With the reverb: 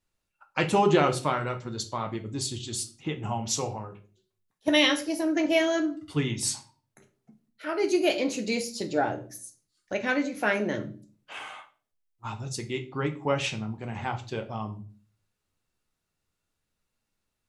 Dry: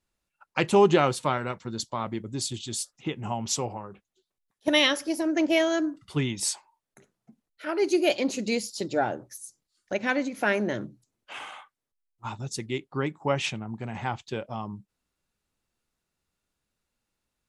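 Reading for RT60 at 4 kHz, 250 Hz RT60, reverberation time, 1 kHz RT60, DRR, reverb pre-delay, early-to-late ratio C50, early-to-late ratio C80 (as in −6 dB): 0.35 s, 0.60 s, 0.40 s, 0.35 s, 4.5 dB, 6 ms, 14.5 dB, 19.5 dB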